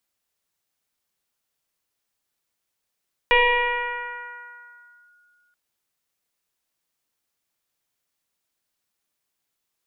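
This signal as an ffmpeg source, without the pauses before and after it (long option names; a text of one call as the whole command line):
ffmpeg -f lavfi -i "aevalsrc='0.251*pow(10,-3*t/2.56)*sin(2*PI*1440*t+2.6*clip(1-t/1.81,0,1)*sin(2*PI*0.33*1440*t))':duration=2.23:sample_rate=44100" out.wav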